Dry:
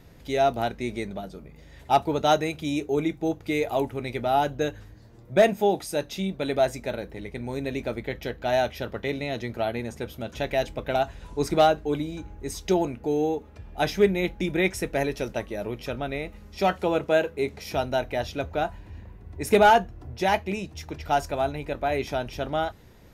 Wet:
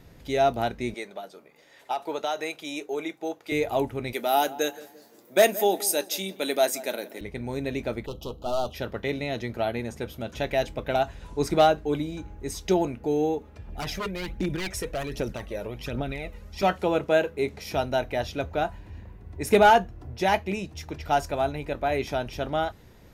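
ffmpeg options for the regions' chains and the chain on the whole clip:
-filter_complex "[0:a]asettb=1/sr,asplit=3[a][b][c];[a]atrim=end=0.944[d];[b]atrim=start=0.94:end=3.52,asetpts=PTS-STARTPTS,afade=t=in:d=0.004:c=qsin,afade=t=out:st=2.576:d=0.004:c=qsin,highpass=480,acompressor=threshold=-24dB:ratio=6:attack=3.2:release=140:knee=1:detection=peak[e];[c]atrim=start=3.516[f];[d][e]acrossfade=d=0.004:c1=hsin:c2=qsin[g];[g][f]acrossfade=d=0.004:c1=qsin:c2=hsin,asettb=1/sr,asplit=3[h][i][j];[h]atrim=end=4.134[k];[i]atrim=start=4.13:end=7.21,asetpts=PTS-STARTPTS,afade=t=in:d=0.004:c=qsin,afade=t=out:st=3.076:d=0.004:c=qsin,highpass=f=240:w=0.5412,highpass=f=240:w=1.3066,aemphasis=mode=production:type=75fm,asplit=2[l][m];[m]adelay=172,lowpass=f=1.5k:p=1,volume=-17dB,asplit=2[n][o];[o]adelay=172,lowpass=f=1.5k:p=1,volume=0.42,asplit=2[p][q];[q]adelay=172,lowpass=f=1.5k:p=1,volume=0.42,asplit=2[r][s];[s]adelay=172,lowpass=f=1.5k:p=1,volume=0.42[t];[l][n][p][r][t]amix=inputs=5:normalize=0,atrim=end_sample=135828[u];[j]atrim=start=7.206[v];[k][u]acrossfade=d=0.004:c1=hsin:c2=qsin[w];[w][v]acrossfade=d=0.004:c1=qsin:c2=hsin,asettb=1/sr,asplit=3[x][y][z];[x]atrim=end=8.064[aa];[y]atrim=start=8.06:end=8.74,asetpts=PTS-STARTPTS,afade=t=in:d=0.004:c=qsin,afade=t=out:st=0.676:d=0.004:c=qsin,aeval=exprs='clip(val(0),-1,0.02)':c=same,asuperstop=centerf=1900:order=12:qfactor=1.3[ab];[z]atrim=start=8.736[ac];[aa][ab]acrossfade=d=0.004:c1=hsin:c2=qsin[ad];[ad][ac]acrossfade=d=0.004:c1=qsin:c2=hsin,asettb=1/sr,asplit=3[ae][af][ag];[ae]atrim=end=13.684[ah];[af]atrim=start=13.68:end=16.63,asetpts=PTS-STARTPTS,afade=t=in:d=0.004:c=qsin,afade=t=out:st=2.946:d=0.004:c=qsin,aeval=exprs='0.106*(abs(mod(val(0)/0.106+3,4)-2)-1)':c=same,acompressor=threshold=-28dB:ratio=6:attack=3.2:release=140:knee=1:detection=peak,aphaser=in_gain=1:out_gain=1:delay=2.2:decay=0.5:speed=1.3:type=triangular[ai];[ag]atrim=start=16.626[aj];[ah][ai]acrossfade=d=0.004:c1=hsin:c2=qsin[ak];[ak][aj]acrossfade=d=0.004:c1=qsin:c2=hsin"

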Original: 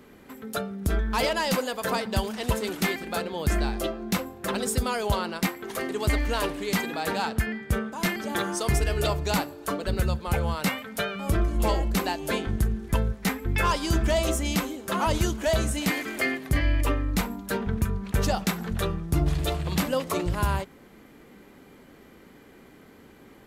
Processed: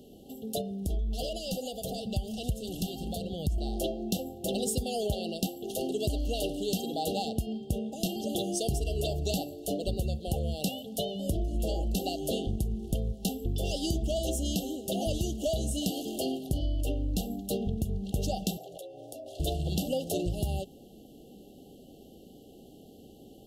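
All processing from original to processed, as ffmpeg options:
-filter_complex "[0:a]asettb=1/sr,asplit=3[a][b][c];[a]atrim=end=0.614[d];[b]atrim=start=0.61:end=3.58,asetpts=PTS-STARTPTS,afade=t=in:d=0.004:c=qsin,afade=t=out:st=2.966:d=0.004:c=qsin,acompressor=threshold=-32dB:ratio=2.5:attack=3.2:release=140:knee=1:detection=peak,asubboost=boost=8:cutoff=140[e];[c]atrim=start=3.576[f];[d][e]acrossfade=d=0.004:c1=hsin:c2=qsin[g];[g][f]acrossfade=d=0.004:c1=qsin:c2=hsin,asettb=1/sr,asplit=3[h][i][j];[h]atrim=end=18.574[k];[i]atrim=start=18.57:end=19.4,asetpts=PTS-STARTPTS,afade=t=in:d=0.004:c=qsin,afade=t=out:st=0.826:d=0.004:c=qsin,highpass=f=600:t=q:w=4.2,afreqshift=-48,acompressor=threshold=-39dB:ratio=16:attack=3.2:release=140:knee=1:detection=peak[l];[j]atrim=start=19.396[m];[k][l]acrossfade=d=0.004:c1=hsin:c2=qsin[n];[n][m]acrossfade=d=0.004:c1=qsin:c2=hsin,afftfilt=real='re*(1-between(b*sr/4096,810,2700))':imag='im*(1-between(b*sr/4096,810,2700))':win_size=4096:overlap=0.75,acompressor=threshold=-26dB:ratio=10"

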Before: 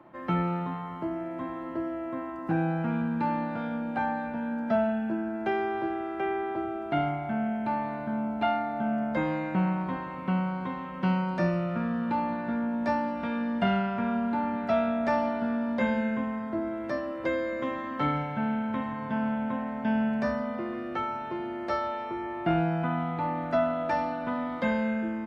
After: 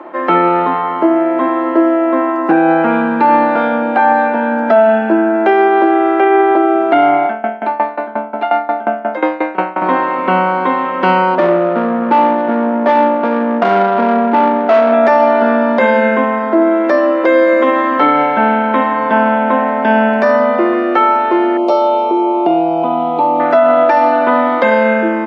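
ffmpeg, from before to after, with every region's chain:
-filter_complex "[0:a]asettb=1/sr,asplit=3[a][b][c];[a]atrim=end=7.264[d];[b]atrim=start=7.26:end=9.82,asetpts=PTS-STARTPTS,afade=t=in:d=0.004:c=qsin,afade=t=out:st=2.556:d=0.004:c=qsin,highpass=250,aeval=exprs='val(0)*pow(10,-20*if(lt(mod(5.6*n/s,1),2*abs(5.6)/1000),1-mod(5.6*n/s,1)/(2*abs(5.6)/1000),(mod(5.6*n/s,1)-2*abs(5.6)/1000)/(1-2*abs(5.6)/1000))/20)':c=same[e];[c]atrim=start=9.816[f];[d][e]acrossfade=d=0.004:c1=hsin:c2=qsin[g];[g][f]acrossfade=d=0.004:c1=qsin:c2=hsin,asettb=1/sr,asplit=3[h][i][j];[h]atrim=end=11.354[k];[i]atrim=start=11.35:end=14.94,asetpts=PTS-STARTPTS,afade=t=in:d=0.004:c=qsin,afade=t=out:st=3.586:d=0.004:c=qsin,asoftclip=type=hard:threshold=-22.5dB,adynamicsmooth=sensitivity=1.5:basefreq=610[l];[j]atrim=start=14.936[m];[k][l]acrossfade=d=0.004:c1=hsin:c2=qsin[n];[n][m]acrossfade=d=0.004:c1=qsin:c2=hsin,asettb=1/sr,asplit=3[o][p][q];[o]atrim=end=21.574[r];[p]atrim=start=21.57:end=23.4,asetpts=PTS-STARTPTS,afade=t=in:d=0.004:c=qsin,afade=t=out:st=1.826:d=0.004:c=qsin,asuperstop=centerf=1700:order=4:qfactor=1,acompressor=threshold=-30dB:ratio=3:attack=3.2:release=140:knee=1:detection=peak[s];[q]atrim=start=23.396[t];[r][s]acrossfade=d=0.004:c1=hsin:c2=qsin[u];[u][t]acrossfade=d=0.004:c1=qsin:c2=hsin,highpass=f=310:w=0.5412,highpass=f=310:w=1.3066,aemphasis=mode=reproduction:type=75kf,alimiter=level_in=24.5dB:limit=-1dB:release=50:level=0:latency=1,volume=-1dB"

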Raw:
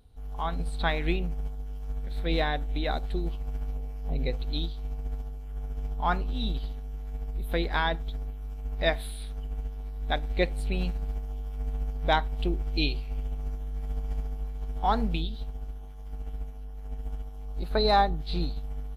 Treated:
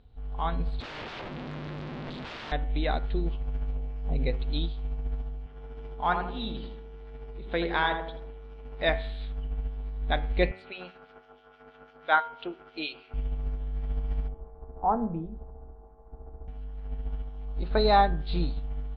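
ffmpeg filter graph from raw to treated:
-filter_complex "[0:a]asettb=1/sr,asplit=3[a][b][c];[a]atrim=end=0.804[d];[b]atrim=start=0.8:end=2.52,asetpts=PTS-STARTPTS,afade=t=in:d=0.004:c=qsin,afade=t=out:st=1.716:d=0.004:c=qsin,acompressor=threshold=-31dB:ratio=2:attack=3.2:release=140:knee=1:detection=peak,aeval=exprs='(mod(53.1*val(0)+1,2)-1)/53.1':c=same[e];[c]atrim=start=2.516[f];[d][e]acrossfade=d=0.004:c1=hsin:c2=qsin[g];[g][f]acrossfade=d=0.004:c1=qsin:c2=hsin,asettb=1/sr,asplit=3[h][i][j];[h]atrim=end=5.464[k];[i]atrim=start=5.46:end=8.89,asetpts=PTS-STARTPTS,afade=t=in:d=0.004:c=qsin,afade=t=out:st=3.426:d=0.004:c=qsin,highpass=f=240:p=1,asplit=2[l][m];[m]adelay=82,lowpass=f=1.2k:p=1,volume=-4.5dB,asplit=2[n][o];[o]adelay=82,lowpass=f=1.2k:p=1,volume=0.48,asplit=2[p][q];[q]adelay=82,lowpass=f=1.2k:p=1,volume=0.48,asplit=2[r][s];[s]adelay=82,lowpass=f=1.2k:p=1,volume=0.48,asplit=2[t][u];[u]adelay=82,lowpass=f=1.2k:p=1,volume=0.48,asplit=2[v][w];[w]adelay=82,lowpass=f=1.2k:p=1,volume=0.48[x];[l][n][p][r][t][v][x]amix=inputs=7:normalize=0,atrim=end_sample=151263[y];[j]atrim=start=8.886[z];[k][y]acrossfade=d=0.004:c1=hsin:c2=qsin[aa];[aa][z]acrossfade=d=0.004:c1=qsin:c2=hsin,asettb=1/sr,asplit=3[ab][ac][ad];[ab]atrim=end=10.514[ae];[ac]atrim=start=10.51:end=13.14,asetpts=PTS-STARTPTS,afade=t=in:d=0.004:c=qsin,afade=t=out:st=2.626:d=0.004:c=qsin,highpass=440,equalizer=f=1.4k:w=5.1:g=13,acrossover=split=1900[af][ag];[af]aeval=exprs='val(0)*(1-0.7/2+0.7/2*cos(2*PI*6.1*n/s))':c=same[ah];[ag]aeval=exprs='val(0)*(1-0.7/2-0.7/2*cos(2*PI*6.1*n/s))':c=same[ai];[ah][ai]amix=inputs=2:normalize=0[aj];[ad]atrim=start=13.136[ak];[ae][aj]acrossfade=d=0.004:c1=hsin:c2=qsin[al];[al][ak]acrossfade=d=0.004:c1=qsin:c2=hsin,asettb=1/sr,asplit=3[am][an][ao];[am]atrim=end=14.284[ap];[an]atrim=start=14.28:end=16.48,asetpts=PTS-STARTPTS,afade=t=in:d=0.004:c=qsin,afade=t=out:st=2.196:d=0.004:c=qsin,lowpass=f=1.1k:w=0.5412,lowpass=f=1.1k:w=1.3066,bandreject=f=50:t=h:w=6,bandreject=f=100:t=h:w=6,bandreject=f=150:t=h:w=6,bandreject=f=200:t=h:w=6,bandreject=f=250:t=h:w=6,bandreject=f=300:t=h:w=6[aq];[ao]atrim=start=16.476[ar];[ap][aq]acrossfade=d=0.004:c1=hsin:c2=qsin[as];[as][ar]acrossfade=d=0.004:c1=qsin:c2=hsin,lowpass=f=3.8k:w=0.5412,lowpass=f=3.8k:w=1.3066,bandreject=f=93.63:t=h:w=4,bandreject=f=187.26:t=h:w=4,bandreject=f=280.89:t=h:w=4,bandreject=f=374.52:t=h:w=4,bandreject=f=468.15:t=h:w=4,bandreject=f=561.78:t=h:w=4,bandreject=f=655.41:t=h:w=4,bandreject=f=749.04:t=h:w=4,bandreject=f=842.67:t=h:w=4,bandreject=f=936.3:t=h:w=4,bandreject=f=1.02993k:t=h:w=4,bandreject=f=1.12356k:t=h:w=4,bandreject=f=1.21719k:t=h:w=4,bandreject=f=1.31082k:t=h:w=4,bandreject=f=1.40445k:t=h:w=4,bandreject=f=1.49808k:t=h:w=4,bandreject=f=1.59171k:t=h:w=4,bandreject=f=1.68534k:t=h:w=4,bandreject=f=1.77897k:t=h:w=4,bandreject=f=1.8726k:t=h:w=4,bandreject=f=1.96623k:t=h:w=4,bandreject=f=2.05986k:t=h:w=4,bandreject=f=2.15349k:t=h:w=4,bandreject=f=2.24712k:t=h:w=4,bandreject=f=2.34075k:t=h:w=4,bandreject=f=2.43438k:t=h:w=4,bandreject=f=2.52801k:t=h:w=4,bandreject=f=2.62164k:t=h:w=4,bandreject=f=2.71527k:t=h:w=4,bandreject=f=2.8089k:t=h:w=4,bandreject=f=2.90253k:t=h:w=4,bandreject=f=2.99616k:t=h:w=4,bandreject=f=3.08979k:t=h:w=4,bandreject=f=3.18342k:t=h:w=4,bandreject=f=3.27705k:t=h:w=4,bandreject=f=3.37068k:t=h:w=4,volume=1.5dB"

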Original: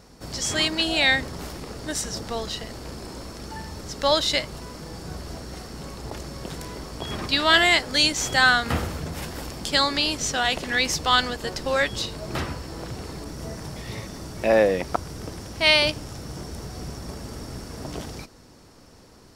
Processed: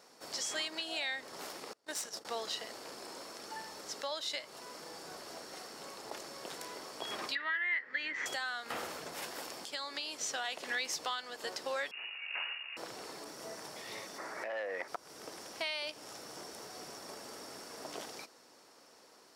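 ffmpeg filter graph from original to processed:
-filter_complex "[0:a]asettb=1/sr,asplit=3[a][b][c];[a]atrim=end=1.734[d];[b]atrim=start=1.73:end=2.25,asetpts=PTS-STARTPTS,afade=t=in:d=0.004:c=qsin,afade=t=out:st=0.516:d=0.004:c=qsin,agate=range=-26dB:threshold=-33dB:ratio=16:release=100:detection=peak,aeval=exprs='(tanh(11.2*val(0)+0.7)-tanh(0.7))/11.2':c=same[e];[c]atrim=start=2.246[f];[d][e]acrossfade=d=0.004:c1=hsin:c2=qsin[g];[g][f]acrossfade=d=0.004:c1=qsin:c2=hsin,asettb=1/sr,asplit=3[h][i][j];[h]atrim=end=7.354[k];[i]atrim=start=7.35:end=8.26,asetpts=PTS-STARTPTS,afade=t=in:d=0.004:c=qsin,afade=t=out:st=0.906:d=0.004:c=qsin,lowpass=f=1.9k:t=q:w=12,equalizer=f=720:t=o:w=0.65:g=-9.5[l];[j]atrim=start=8.256[m];[k][l]acrossfade=d=0.004:c1=hsin:c2=qsin[n];[n][m]acrossfade=d=0.004:c1=qsin:c2=hsin,asettb=1/sr,asplit=3[o][p][q];[o]atrim=end=11.914[r];[p]atrim=start=11.91:end=12.77,asetpts=PTS-STARTPTS,afade=t=in:d=0.004:c=qsin,afade=t=out:st=0.856:d=0.004:c=qsin,aeval=exprs='(tanh(17.8*val(0)+0.7)-tanh(0.7))/17.8':c=same,lowpass=f=2.5k:t=q:w=0.5098,lowpass=f=2.5k:t=q:w=0.6013,lowpass=f=2.5k:t=q:w=0.9,lowpass=f=2.5k:t=q:w=2.563,afreqshift=-2900[s];[q]atrim=start=12.766[t];[r][s]acrossfade=d=0.004:c1=hsin:c2=qsin[u];[u][t]acrossfade=d=0.004:c1=qsin:c2=hsin,asettb=1/sr,asplit=3[v][w][x];[v]atrim=end=14.184[y];[w]atrim=start=14.18:end=14.88,asetpts=PTS-STARTPTS,afade=t=in:d=0.004:c=qsin,afade=t=out:st=0.696:d=0.004:c=qsin,highshelf=f=2.4k:t=q:w=3:g=-6.5,asplit=2[z][aa];[aa]highpass=f=720:p=1,volume=13dB,asoftclip=type=tanh:threshold=-6dB[ab];[z][ab]amix=inputs=2:normalize=0,lowpass=f=4.6k:p=1,volume=-6dB[ac];[x]atrim=start=14.876[ad];[y][ac]acrossfade=d=0.004:c1=hsin:c2=qsin[ae];[ae][ad]acrossfade=d=0.004:c1=qsin:c2=hsin,highpass=470,acompressor=threshold=-27dB:ratio=5,alimiter=limit=-19dB:level=0:latency=1:release=430,volume=-5.5dB"

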